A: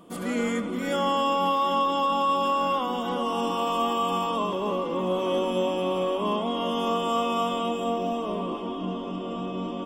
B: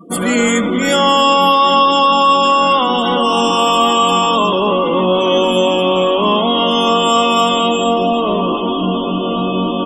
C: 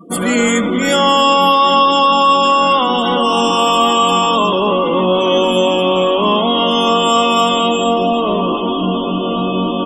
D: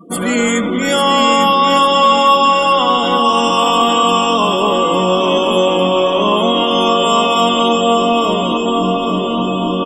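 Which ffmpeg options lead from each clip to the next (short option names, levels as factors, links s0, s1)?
-filter_complex "[0:a]afftdn=nr=35:nf=-45,highshelf=f=2800:g=12,asplit=2[s0][s1];[s1]alimiter=limit=0.0708:level=0:latency=1:release=14,volume=1.06[s2];[s0][s2]amix=inputs=2:normalize=0,volume=2.51"
-af anull
-af "aecho=1:1:850|1700|2550|3400|4250:0.501|0.2|0.0802|0.0321|0.0128,volume=0.891"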